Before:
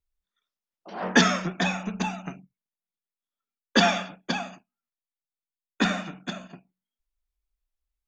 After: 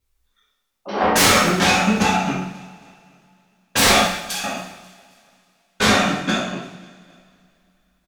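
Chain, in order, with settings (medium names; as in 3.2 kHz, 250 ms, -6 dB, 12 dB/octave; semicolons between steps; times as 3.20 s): sine folder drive 17 dB, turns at -5.5 dBFS; 4.02–4.44 s: differentiator; on a send: feedback delay 269 ms, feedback 49%, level -22 dB; on the sum: two-slope reverb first 0.69 s, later 3.2 s, from -26 dB, DRR -7 dB; trim -12 dB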